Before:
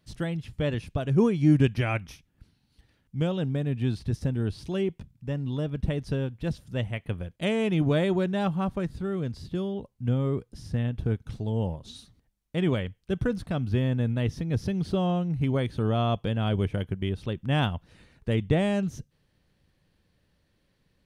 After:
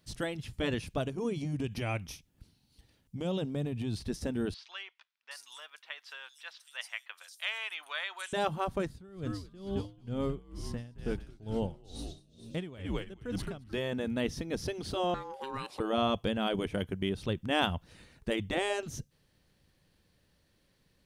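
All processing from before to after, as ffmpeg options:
-filter_complex "[0:a]asettb=1/sr,asplit=3[a][b][c];[a]atrim=end=1.014[d];[b]atrim=start=1.01:end=3.96,asetpts=PTS-STARTPTS,afade=t=in:d=0.004:c=qsin,afade=t=out:st=2.946:d=0.004:c=qsin,equalizer=f=1.6k:t=o:w=0.97:g=-5.5,acompressor=threshold=-26dB:ratio=6:attack=3.2:release=140:knee=1:detection=peak[e];[c]atrim=start=3.956[f];[d][e]acrossfade=d=0.004:c1=hsin:c2=qsin[g];[g][f]acrossfade=d=0.004:c1=qsin:c2=hsin,asettb=1/sr,asplit=3[h][i][j];[h]atrim=end=4.544[k];[i]atrim=start=4.54:end=8.33,asetpts=PTS-STARTPTS,afade=t=in:d=0.004:c=qsin,afade=t=out:st=3.786:d=0.004:c=qsin,highpass=f=1.1k:w=0.5412,highpass=f=1.1k:w=1.3066,acrossover=split=4800[l][m];[m]adelay=770[n];[l][n]amix=inputs=2:normalize=0,atrim=end_sample=167139[o];[j]atrim=start=8.326[p];[k][o]acrossfade=d=0.004:c1=hsin:c2=qsin[q];[q][p]acrossfade=d=0.004:c1=qsin:c2=hsin,asettb=1/sr,asplit=3[r][s][t];[r]atrim=end=8.864[u];[s]atrim=start=8.86:end=13.73,asetpts=PTS-STARTPTS,afade=t=in:d=0.004:c=qsin,afade=t=out:st=4.866:d=0.004:c=qsin,asplit=8[v][w][x][y][z][aa][ab][ac];[w]adelay=219,afreqshift=-85,volume=-6dB[ad];[x]adelay=438,afreqshift=-170,volume=-10.9dB[ae];[y]adelay=657,afreqshift=-255,volume=-15.8dB[af];[z]adelay=876,afreqshift=-340,volume=-20.6dB[ag];[aa]adelay=1095,afreqshift=-425,volume=-25.5dB[ah];[ab]adelay=1314,afreqshift=-510,volume=-30.4dB[ai];[ac]adelay=1533,afreqshift=-595,volume=-35.3dB[aj];[v][ad][ae][af][ag][ah][ai][aj]amix=inputs=8:normalize=0,atrim=end_sample=214767,aeval=exprs='val(0)*pow(10,-22*(0.5-0.5*cos(2*PI*2.2*n/s))/20)':c=same[ak];[t]atrim=start=13.726[al];[u][ak]acrossfade=d=0.004:c1=hsin:c2=qsin[am];[am][al]acrossfade=d=0.004:c1=qsin:c2=hsin,asettb=1/sr,asplit=3[an][ao][ap];[an]atrim=end=15.144[aq];[ao]atrim=start=15.14:end=15.8,asetpts=PTS-STARTPTS,afade=t=in:d=0.004:c=qsin,afade=t=out:st=0.656:d=0.004:c=qsin,bass=f=250:g=-15,treble=f=4k:g=1,aeval=exprs='val(0)*sin(2*PI*670*n/s)':c=same,acompressor=threshold=-36dB:ratio=2:attack=3.2:release=140:knee=1:detection=peak[ar];[ap]atrim=start=15.796[as];[aq][ar]acrossfade=d=0.004:c1=hsin:c2=qsin[at];[at][as]acrossfade=d=0.004:c1=qsin:c2=hsin,afftfilt=real='re*lt(hypot(re,im),0.355)':imag='im*lt(hypot(re,im),0.355)':win_size=1024:overlap=0.75,bass=f=250:g=-2,treble=f=4k:g=5"

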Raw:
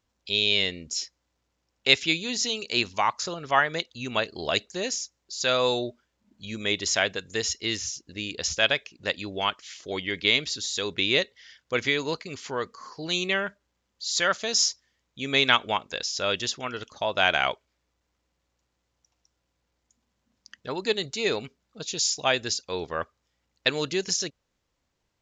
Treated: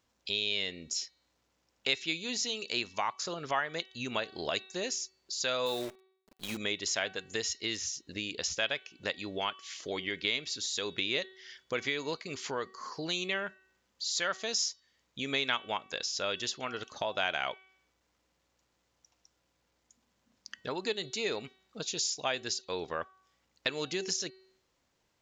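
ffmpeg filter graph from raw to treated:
-filter_complex "[0:a]asettb=1/sr,asplit=3[a][b][c];[a]atrim=end=5.664[d];[b]atrim=start=5.66:end=6.57,asetpts=PTS-STARTPTS,afade=t=in:d=0.004:c=qsin,afade=t=out:st=0.906:d=0.004:c=qsin,highpass=98,acrusher=bits=7:dc=4:mix=0:aa=0.000001[e];[c]atrim=start=6.566[f];[d][e]acrossfade=d=0.004:c1=hsin:c2=qsin[g];[g][f]acrossfade=d=0.004:c1=qsin:c2=hsin,lowshelf=f=110:g=-9.5,bandreject=f=378.2:t=h:w=4,bandreject=f=756.4:t=h:w=4,bandreject=f=1.1346k:t=h:w=4,bandreject=f=1.5128k:t=h:w=4,bandreject=f=1.891k:t=h:w=4,bandreject=f=2.2692k:t=h:w=4,bandreject=f=2.6474k:t=h:w=4,bandreject=f=3.0256k:t=h:w=4,bandreject=f=3.4038k:t=h:w=4,bandreject=f=3.782k:t=h:w=4,bandreject=f=4.1602k:t=h:w=4,bandreject=f=4.5384k:t=h:w=4,acompressor=threshold=-41dB:ratio=2,volume=3dB"

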